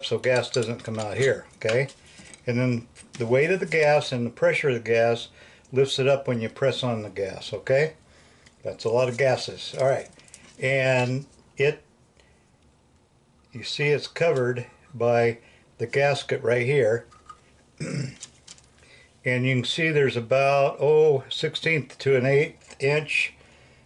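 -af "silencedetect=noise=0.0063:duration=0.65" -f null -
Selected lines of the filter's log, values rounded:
silence_start: 12.20
silence_end: 13.53 | silence_duration: 1.33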